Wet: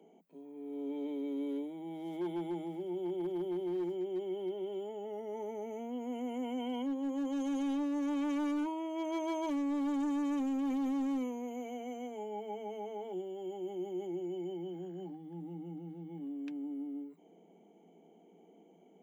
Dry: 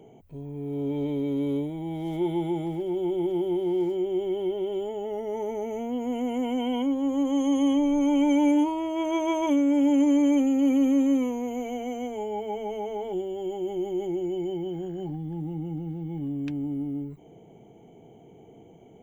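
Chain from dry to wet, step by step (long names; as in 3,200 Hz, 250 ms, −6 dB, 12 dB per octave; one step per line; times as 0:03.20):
Chebyshev high-pass filter 170 Hz, order 8
hard clipping −22 dBFS, distortion −13 dB
level −9 dB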